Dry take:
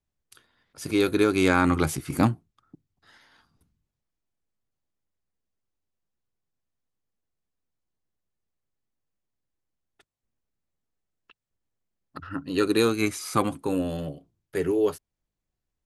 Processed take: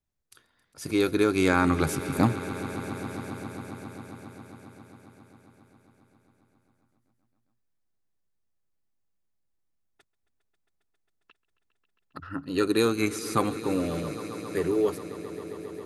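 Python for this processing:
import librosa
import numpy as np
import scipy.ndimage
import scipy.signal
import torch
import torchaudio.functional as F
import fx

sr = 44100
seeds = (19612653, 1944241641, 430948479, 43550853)

y = fx.peak_eq(x, sr, hz=3000.0, db=-3.0, octaves=0.38)
y = fx.echo_swell(y, sr, ms=135, loudest=5, wet_db=-18.0)
y = y * 10.0 ** (-1.5 / 20.0)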